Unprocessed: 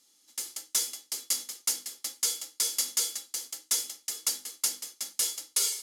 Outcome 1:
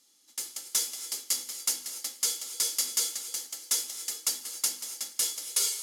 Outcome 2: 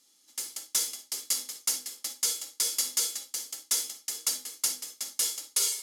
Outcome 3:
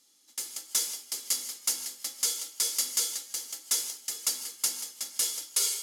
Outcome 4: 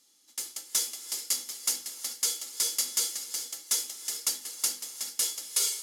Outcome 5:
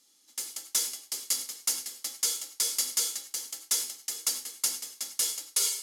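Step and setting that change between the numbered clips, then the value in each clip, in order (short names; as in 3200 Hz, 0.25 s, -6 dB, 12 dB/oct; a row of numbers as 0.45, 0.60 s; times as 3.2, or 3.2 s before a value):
non-linear reverb, gate: 310, 80, 180, 460, 120 ms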